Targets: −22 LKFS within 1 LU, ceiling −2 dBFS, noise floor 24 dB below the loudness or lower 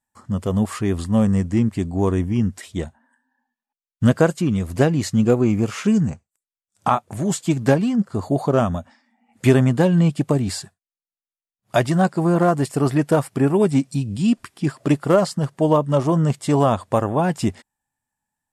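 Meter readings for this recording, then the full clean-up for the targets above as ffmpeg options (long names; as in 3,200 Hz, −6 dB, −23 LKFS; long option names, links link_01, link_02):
integrated loudness −20.0 LKFS; sample peak −3.5 dBFS; target loudness −22.0 LKFS
→ -af "volume=-2dB"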